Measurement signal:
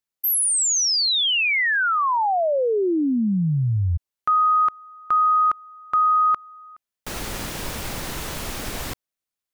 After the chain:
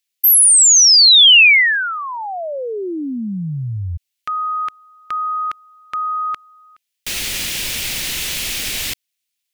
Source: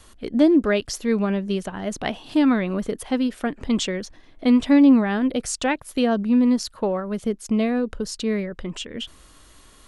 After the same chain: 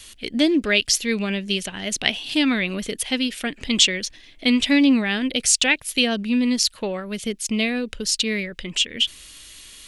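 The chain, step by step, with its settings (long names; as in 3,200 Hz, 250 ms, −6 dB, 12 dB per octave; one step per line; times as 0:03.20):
high shelf with overshoot 1,700 Hz +13 dB, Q 1.5
level −2.5 dB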